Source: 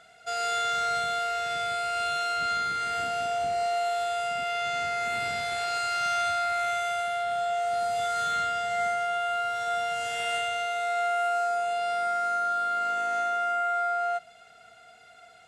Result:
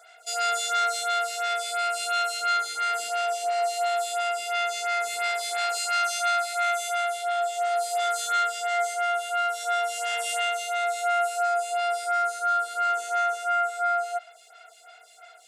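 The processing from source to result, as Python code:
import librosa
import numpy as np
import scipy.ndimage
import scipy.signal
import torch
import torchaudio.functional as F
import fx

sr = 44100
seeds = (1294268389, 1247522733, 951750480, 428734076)

y = scipy.signal.sosfilt(scipy.signal.butter(4, 480.0, 'highpass', fs=sr, output='sos'), x)
y = fx.high_shelf(y, sr, hz=4100.0, db=11.5)
y = fx.stagger_phaser(y, sr, hz=2.9)
y = y * librosa.db_to_amplitude(3.5)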